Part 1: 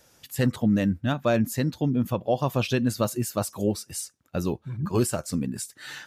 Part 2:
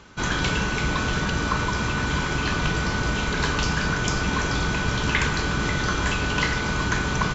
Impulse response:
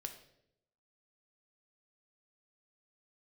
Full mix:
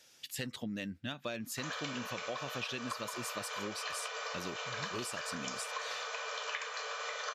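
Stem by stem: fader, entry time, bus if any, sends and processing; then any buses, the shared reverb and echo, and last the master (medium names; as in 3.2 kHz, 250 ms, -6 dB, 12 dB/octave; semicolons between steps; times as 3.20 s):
-9.5 dB, 0.00 s, no send, frequency weighting D
-4.5 dB, 1.40 s, no send, Chebyshev high-pass 440 Hz, order 10; comb 1.7 ms, depth 45%; upward expansion 1.5:1, over -41 dBFS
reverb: none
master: compression, threshold -36 dBFS, peak gain reduction 12 dB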